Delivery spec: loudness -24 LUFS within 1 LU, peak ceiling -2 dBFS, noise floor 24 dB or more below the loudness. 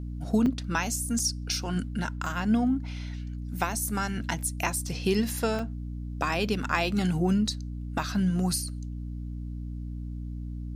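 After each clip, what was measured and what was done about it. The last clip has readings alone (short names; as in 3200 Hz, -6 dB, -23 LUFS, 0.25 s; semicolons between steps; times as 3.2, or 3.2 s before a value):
dropouts 4; longest dropout 3.4 ms; hum 60 Hz; harmonics up to 300 Hz; hum level -33 dBFS; loudness -29.5 LUFS; peak -10.0 dBFS; loudness target -24.0 LUFS
-> interpolate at 0.46/1.19/2.26/5.59, 3.4 ms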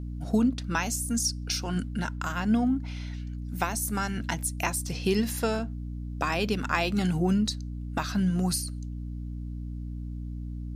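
dropouts 0; hum 60 Hz; harmonics up to 300 Hz; hum level -33 dBFS
-> de-hum 60 Hz, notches 5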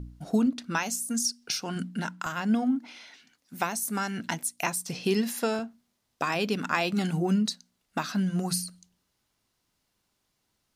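hum none; loudness -29.0 LUFS; peak -10.0 dBFS; loudness target -24.0 LUFS
-> gain +5 dB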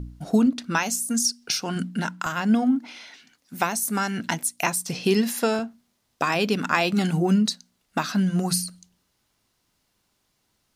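loudness -24.0 LUFS; peak -5.0 dBFS; noise floor -72 dBFS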